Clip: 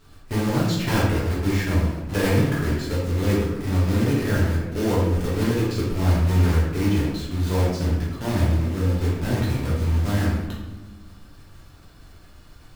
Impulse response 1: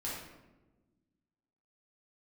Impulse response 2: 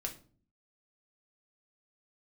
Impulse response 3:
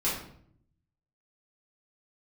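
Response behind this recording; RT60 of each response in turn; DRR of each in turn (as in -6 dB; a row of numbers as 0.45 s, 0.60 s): 1; 1.2 s, 0.45 s, 0.65 s; -7.5 dB, 1.5 dB, -9.0 dB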